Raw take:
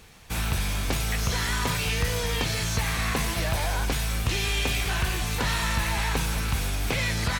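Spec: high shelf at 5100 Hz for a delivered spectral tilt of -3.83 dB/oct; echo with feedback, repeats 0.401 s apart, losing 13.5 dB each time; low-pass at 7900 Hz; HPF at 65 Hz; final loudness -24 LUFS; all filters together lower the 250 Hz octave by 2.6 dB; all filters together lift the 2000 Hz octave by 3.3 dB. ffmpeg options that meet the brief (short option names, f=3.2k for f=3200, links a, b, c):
-af "highpass=65,lowpass=7.9k,equalizer=f=250:t=o:g=-4,equalizer=f=2k:t=o:g=5.5,highshelf=f=5.1k:g=-8.5,aecho=1:1:401|802:0.211|0.0444,volume=3dB"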